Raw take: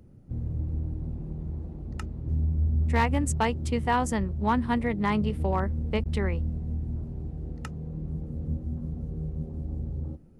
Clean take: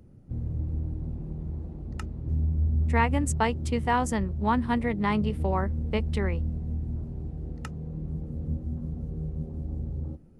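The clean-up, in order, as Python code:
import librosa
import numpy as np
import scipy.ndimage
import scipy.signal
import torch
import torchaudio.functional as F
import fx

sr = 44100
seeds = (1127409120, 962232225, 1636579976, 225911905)

y = fx.fix_declip(x, sr, threshold_db=-16.0)
y = fx.fix_interpolate(y, sr, at_s=(6.04,), length_ms=14.0)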